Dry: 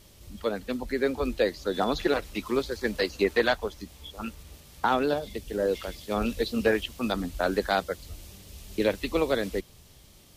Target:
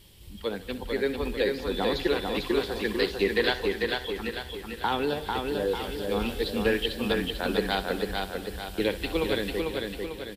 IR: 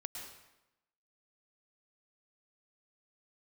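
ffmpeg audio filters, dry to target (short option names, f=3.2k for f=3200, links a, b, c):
-filter_complex "[0:a]equalizer=f=250:t=o:w=0.33:g=-5,equalizer=f=630:t=o:w=0.33:g=-10,equalizer=f=1.25k:t=o:w=0.33:g=-8,equalizer=f=3.15k:t=o:w=0.33:g=6,equalizer=f=6.3k:t=o:w=0.33:g=-9,aecho=1:1:446|892|1338|1784|2230|2676:0.668|0.327|0.16|0.0786|0.0385|0.0189,asplit=2[a][b];[1:a]atrim=start_sample=2205,adelay=63[c];[b][c]afir=irnorm=-1:irlink=0,volume=-11dB[d];[a][d]amix=inputs=2:normalize=0"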